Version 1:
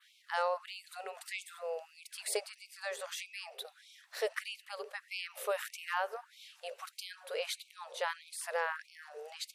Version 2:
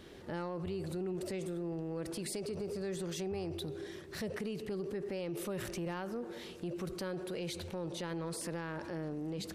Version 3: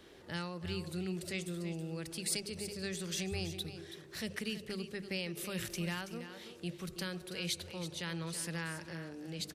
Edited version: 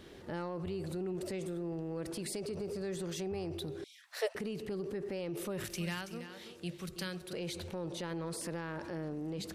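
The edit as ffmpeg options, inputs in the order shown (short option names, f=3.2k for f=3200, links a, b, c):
-filter_complex "[1:a]asplit=3[a][b][c];[a]atrim=end=3.842[d];[0:a]atrim=start=3.838:end=4.352[e];[b]atrim=start=4.348:end=5.642[f];[2:a]atrim=start=5.638:end=7.332[g];[c]atrim=start=7.328[h];[d][e]acrossfade=d=0.004:c1=hsin:c2=hsin[i];[i][f]acrossfade=d=0.004:c1=hsin:c2=hsin[j];[j][g]acrossfade=d=0.004:c1=hsin:c2=hsin[k];[k][h]acrossfade=d=0.004:c1=hsin:c2=hsin"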